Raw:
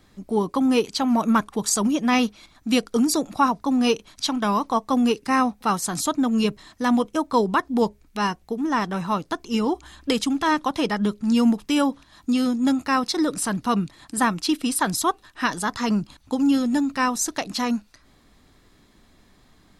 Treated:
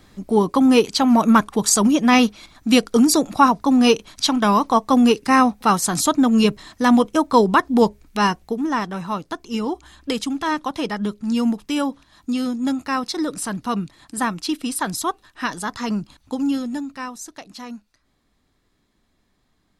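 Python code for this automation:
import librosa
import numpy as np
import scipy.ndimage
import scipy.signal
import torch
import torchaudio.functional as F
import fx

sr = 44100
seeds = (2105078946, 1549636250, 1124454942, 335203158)

y = fx.gain(x, sr, db=fx.line((8.37, 5.5), (8.92, -1.5), (16.44, -1.5), (17.2, -11.0)))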